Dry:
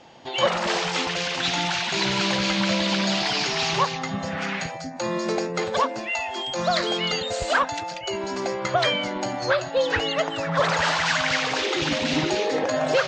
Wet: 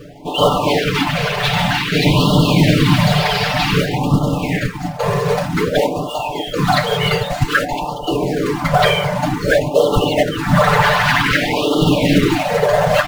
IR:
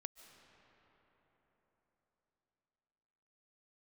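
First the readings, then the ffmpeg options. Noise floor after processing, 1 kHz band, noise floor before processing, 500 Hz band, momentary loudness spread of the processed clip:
-26 dBFS, +7.5 dB, -34 dBFS, +8.5 dB, 7 LU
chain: -filter_complex "[0:a]lowshelf=f=180:g=11.5,asplit=2[a][b];[b]adynamicsmooth=sensitivity=3:basefreq=2k,volume=3dB[c];[a][c]amix=inputs=2:normalize=0,acrusher=bits=3:mode=log:mix=0:aa=0.000001,areverse,acompressor=mode=upward:threshold=-23dB:ratio=2.5,areverse,afftfilt=real='hypot(re,im)*cos(2*PI*random(0))':imag='hypot(re,im)*sin(2*PI*random(1))':win_size=512:overlap=0.75,highshelf=f=6.2k:g=-8.5,aecho=1:1:6.8:0.75,asplit=2[d][e];[e]adelay=286,lowpass=f=940:p=1,volume=-22dB,asplit=2[f][g];[g]adelay=286,lowpass=f=940:p=1,volume=0.27[h];[d][f][h]amix=inputs=3:normalize=0,alimiter=level_in=6.5dB:limit=-1dB:release=50:level=0:latency=1,afftfilt=real='re*(1-between(b*sr/1024,260*pow(2000/260,0.5+0.5*sin(2*PI*0.53*pts/sr))/1.41,260*pow(2000/260,0.5+0.5*sin(2*PI*0.53*pts/sr))*1.41))':imag='im*(1-between(b*sr/1024,260*pow(2000/260,0.5+0.5*sin(2*PI*0.53*pts/sr))/1.41,260*pow(2000/260,0.5+0.5*sin(2*PI*0.53*pts/sr))*1.41))':win_size=1024:overlap=0.75,volume=-1dB"

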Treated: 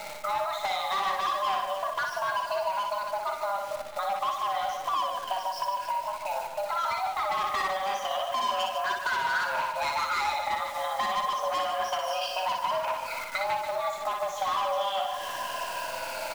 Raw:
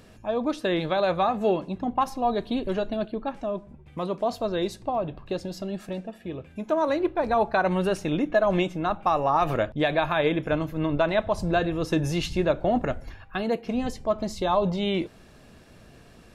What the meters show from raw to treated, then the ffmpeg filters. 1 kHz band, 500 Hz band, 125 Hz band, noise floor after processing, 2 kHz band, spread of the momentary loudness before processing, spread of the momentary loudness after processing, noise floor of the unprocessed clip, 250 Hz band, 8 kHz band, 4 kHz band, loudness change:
+2.0 dB, -8.0 dB, under -20 dB, -37 dBFS, +1.0 dB, 10 LU, 5 LU, -51 dBFS, -26.5 dB, +4.5 dB, +3.0 dB, -3.0 dB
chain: -filter_complex "[0:a]afftfilt=real='re*pow(10,22/40*sin(2*PI*(1*log(max(b,1)*sr/1024/100)/log(2)-(-0.3)*(pts-256)/sr)))':imag='im*pow(10,22/40*sin(2*PI*(1*log(max(b,1)*sr/1024/100)/log(2)-(-0.3)*(pts-256)/sr)))':win_size=1024:overlap=0.75,acrossover=split=2100[a][b];[a]asoftclip=type=tanh:threshold=-20dB[c];[c][b]amix=inputs=2:normalize=0,aemphasis=mode=production:type=50kf,areverse,acompressor=mode=upward:threshold=-28dB:ratio=2.5,areverse,highpass=230,lowpass=2.7k,aecho=1:1:4.8:0.31,adynamicequalizer=threshold=0.0158:dfrequency=670:dqfactor=2.2:tfrequency=670:tqfactor=2.2:attack=5:release=100:ratio=0.375:range=2.5:mode=boostabove:tftype=bell,afreqshift=390,acrusher=bits=8:dc=4:mix=0:aa=0.000001,asoftclip=type=hard:threshold=-20.5dB,acompressor=threshold=-34dB:ratio=6,aecho=1:1:60|150|285|487.5|791.2:0.631|0.398|0.251|0.158|0.1,volume=4.5dB"

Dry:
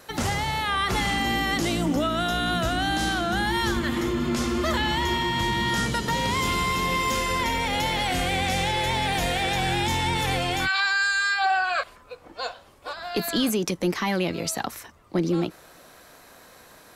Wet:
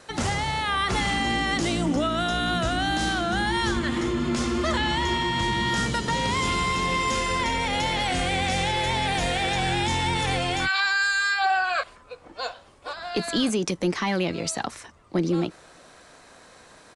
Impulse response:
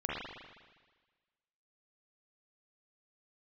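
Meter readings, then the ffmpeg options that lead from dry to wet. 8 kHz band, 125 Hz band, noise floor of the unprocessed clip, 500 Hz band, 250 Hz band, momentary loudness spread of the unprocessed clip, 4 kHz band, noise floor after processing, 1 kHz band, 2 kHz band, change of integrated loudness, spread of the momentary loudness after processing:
-0.5 dB, 0.0 dB, -51 dBFS, 0.0 dB, 0.0 dB, 7 LU, 0.0 dB, -51 dBFS, 0.0 dB, 0.0 dB, 0.0 dB, 7 LU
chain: -af "aresample=22050,aresample=44100"

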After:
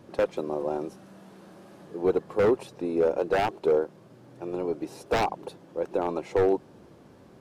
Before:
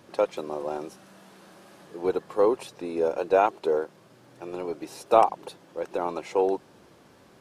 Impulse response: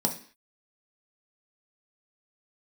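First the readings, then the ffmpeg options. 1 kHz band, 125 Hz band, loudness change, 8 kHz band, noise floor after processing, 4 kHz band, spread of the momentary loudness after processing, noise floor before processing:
-5.0 dB, +8.0 dB, -1.0 dB, n/a, -53 dBFS, +1.5 dB, 12 LU, -56 dBFS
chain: -af "aeval=exprs='0.133*(abs(mod(val(0)/0.133+3,4)-2)-1)':c=same,tiltshelf=f=780:g=5.5"

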